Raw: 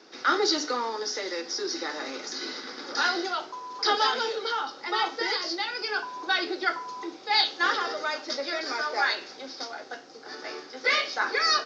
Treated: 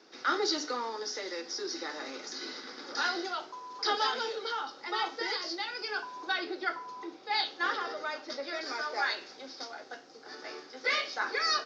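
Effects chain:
0:06.32–0:08.54: high-shelf EQ 5,900 Hz −10 dB
level −5.5 dB

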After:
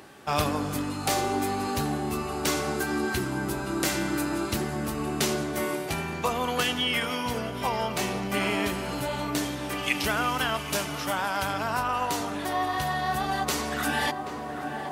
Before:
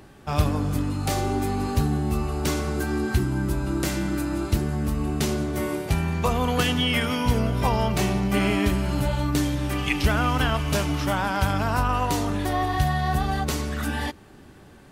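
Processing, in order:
high-pass filter 470 Hz 6 dB per octave
tape delay 780 ms, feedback 77%, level −10.5 dB, low-pass 1,200 Hz
speech leveller within 10 dB 2 s
0:09.83–0:11.43: parametric band 13,000 Hz +4.5 dB 1.5 octaves

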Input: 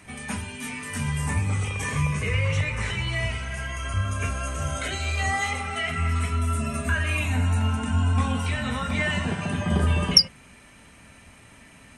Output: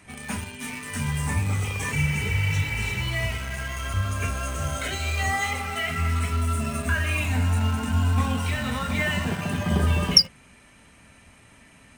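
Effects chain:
healed spectral selection 0:01.95–0:02.93, 470–3,300 Hz after
in parallel at −9 dB: bit reduction 5 bits
on the sum: level −2.5 dB

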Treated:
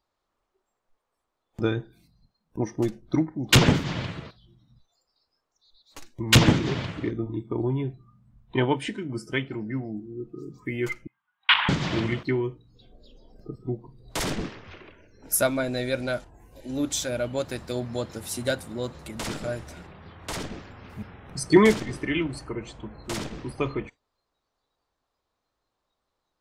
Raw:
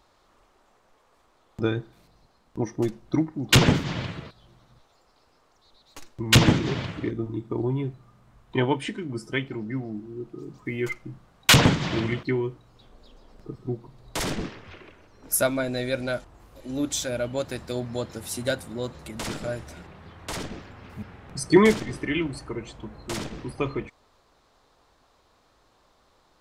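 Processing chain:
noise reduction from a noise print of the clip's start 18 dB
0:11.07–0:11.69: elliptic band-pass filter 910–3,300 Hz, stop band 40 dB

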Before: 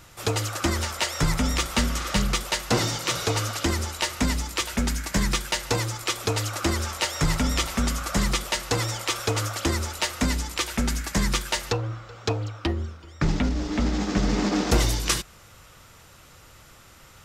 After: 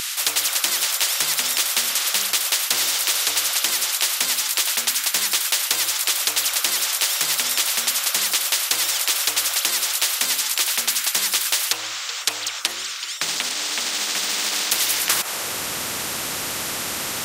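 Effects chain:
high-pass filter sweep 3,500 Hz → 250 Hz, 0:14.83–0:15.67
every bin compressed towards the loudest bin 4 to 1
level +6 dB

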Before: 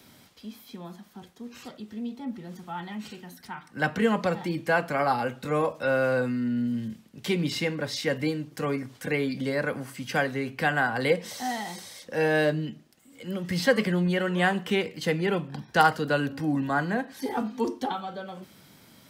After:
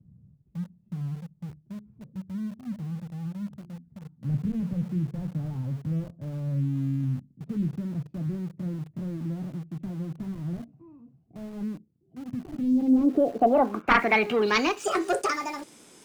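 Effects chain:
gliding playback speed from 78% → 160%
harmonic generator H 3 −7 dB, 7 −20 dB, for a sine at −6.5 dBFS
low-pass filter sweep 140 Hz → 9,400 Hz, 0:12.53–0:14.96
in parallel at −4 dB: centre clipping without the shift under −41.5 dBFS

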